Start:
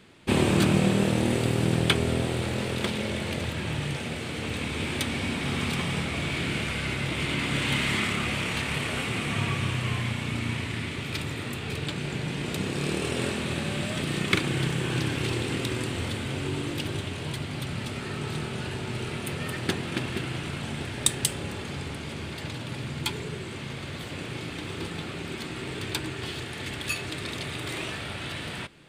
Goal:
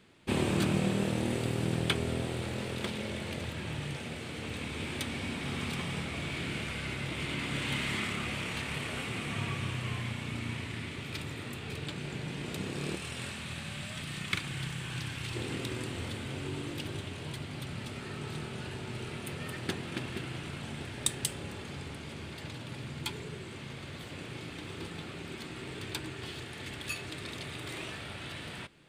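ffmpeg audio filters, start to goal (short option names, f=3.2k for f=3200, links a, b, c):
-filter_complex "[0:a]asettb=1/sr,asplit=3[a][b][c];[a]atrim=end=12.964[d];[b]atrim=start=12.96:end=15.35,asetpts=PTS-STARTPTS,afade=t=in:d=0.004:c=qsin,afade=t=out:st=2.386:d=0.004:c=qsin,equalizer=f=380:w=0.82:g=-12[e];[c]atrim=start=15.346[f];[d][e]acrossfade=d=0.004:c1=hsin:c2=qsin[g];[g][f]acrossfade=d=0.004:c1=qsin:c2=hsin,volume=-7dB"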